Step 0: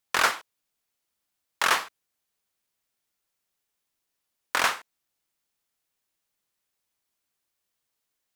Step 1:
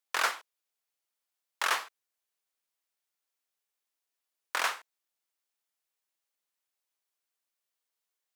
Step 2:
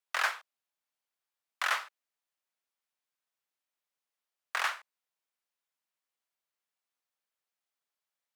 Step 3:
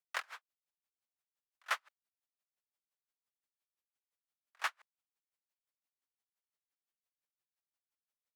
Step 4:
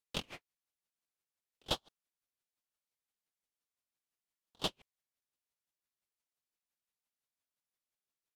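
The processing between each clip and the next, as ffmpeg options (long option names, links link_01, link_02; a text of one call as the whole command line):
ffmpeg -i in.wav -af "highpass=400,volume=-6dB" out.wav
ffmpeg -i in.wav -af "highshelf=frequency=3900:gain=-7.5,afreqshift=160" out.wav
ffmpeg -i in.wav -af "aeval=exprs='val(0)*pow(10,-39*(0.5-0.5*cos(2*PI*5.8*n/s))/20)':channel_layout=same,volume=-2.5dB" out.wav
ffmpeg -i in.wav -af "aresample=32000,aresample=44100,aeval=exprs='val(0)*sin(2*PI*1400*n/s+1400*0.5/1.1*sin(2*PI*1.1*n/s))':channel_layout=same,volume=3dB" out.wav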